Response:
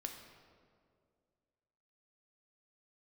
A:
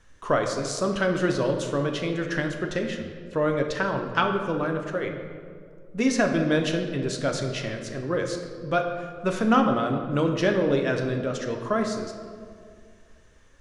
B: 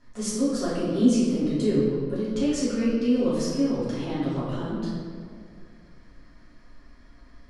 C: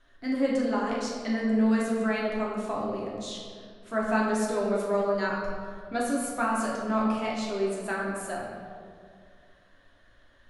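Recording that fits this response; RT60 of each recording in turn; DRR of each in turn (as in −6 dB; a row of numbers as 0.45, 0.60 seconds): A; 2.2, 2.2, 2.2 seconds; 3.0, −11.0, −5.0 decibels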